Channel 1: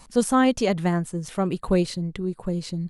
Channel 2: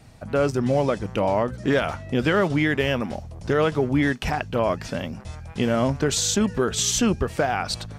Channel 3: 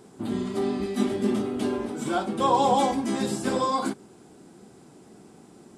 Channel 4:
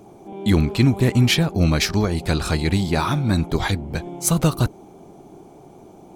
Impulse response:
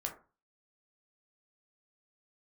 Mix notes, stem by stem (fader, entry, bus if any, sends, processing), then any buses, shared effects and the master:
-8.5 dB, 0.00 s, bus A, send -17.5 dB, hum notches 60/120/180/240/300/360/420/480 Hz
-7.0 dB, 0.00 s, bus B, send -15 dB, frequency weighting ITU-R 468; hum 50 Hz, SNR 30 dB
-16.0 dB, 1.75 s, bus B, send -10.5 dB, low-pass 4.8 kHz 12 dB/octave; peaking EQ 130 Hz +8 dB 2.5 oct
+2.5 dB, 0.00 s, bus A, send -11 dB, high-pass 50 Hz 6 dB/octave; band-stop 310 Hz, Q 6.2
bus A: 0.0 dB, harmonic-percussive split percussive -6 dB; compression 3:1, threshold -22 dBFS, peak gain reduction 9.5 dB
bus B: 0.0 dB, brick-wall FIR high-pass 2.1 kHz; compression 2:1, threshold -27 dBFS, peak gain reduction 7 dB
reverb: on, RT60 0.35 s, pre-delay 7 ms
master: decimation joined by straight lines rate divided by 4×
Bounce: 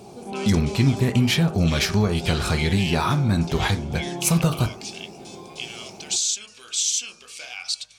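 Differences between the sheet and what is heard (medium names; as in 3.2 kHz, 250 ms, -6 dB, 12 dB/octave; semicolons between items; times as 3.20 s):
stem 1 -8.5 dB -> -19.5 dB; master: missing decimation joined by straight lines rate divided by 4×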